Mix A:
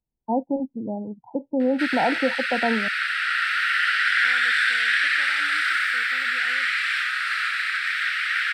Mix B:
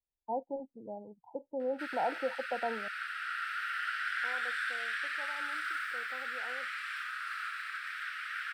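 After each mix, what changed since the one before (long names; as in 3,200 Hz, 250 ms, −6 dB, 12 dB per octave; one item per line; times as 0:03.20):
first voice −11.0 dB
background −7.0 dB
master: add octave-band graphic EQ 125/250/500/1,000/2,000/4,000/8,000 Hz −7/−9/+3/+4/−10/−9/−6 dB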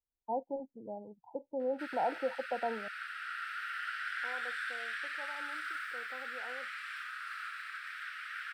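background −3.5 dB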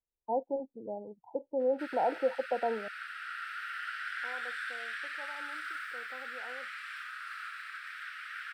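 first voice: add parametric band 440 Hz +6 dB 1.3 octaves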